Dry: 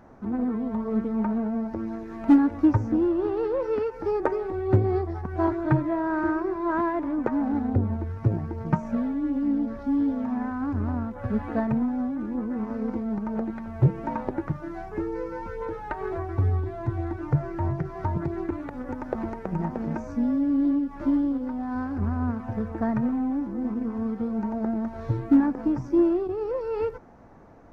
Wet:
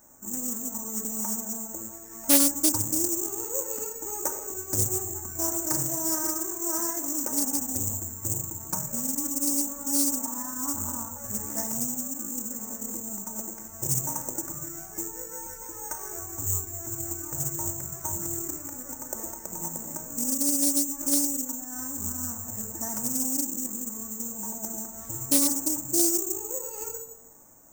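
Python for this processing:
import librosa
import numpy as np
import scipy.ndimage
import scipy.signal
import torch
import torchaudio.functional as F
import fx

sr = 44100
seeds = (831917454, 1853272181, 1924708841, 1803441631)

y = fx.low_shelf(x, sr, hz=270.0, db=-7.0)
y = fx.room_shoebox(y, sr, seeds[0], volume_m3=2600.0, walls='furnished', distance_m=2.5)
y = (np.kron(y[::6], np.eye(6)[0]) * 6)[:len(y)]
y = fx.peak_eq(y, sr, hz=990.0, db=12.0, octaves=0.42, at=(9.16, 11.18))
y = fx.doppler_dist(y, sr, depth_ms=0.57)
y = y * 10.0 ** (-10.5 / 20.0)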